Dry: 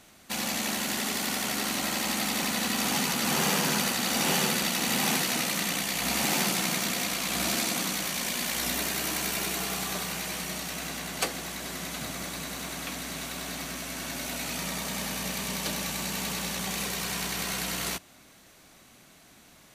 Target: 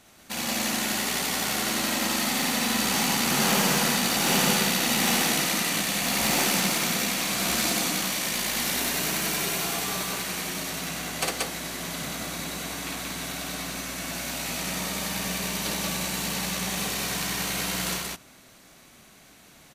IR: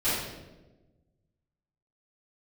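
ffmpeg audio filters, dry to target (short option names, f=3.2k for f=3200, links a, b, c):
-af "aeval=exprs='0.237*(cos(1*acos(clip(val(0)/0.237,-1,1)))-cos(1*PI/2))+0.00299*(cos(4*acos(clip(val(0)/0.237,-1,1)))-cos(4*PI/2))+0.00473*(cos(7*acos(clip(val(0)/0.237,-1,1)))-cos(7*PI/2))':c=same,aecho=1:1:55.39|180.8:0.794|0.891"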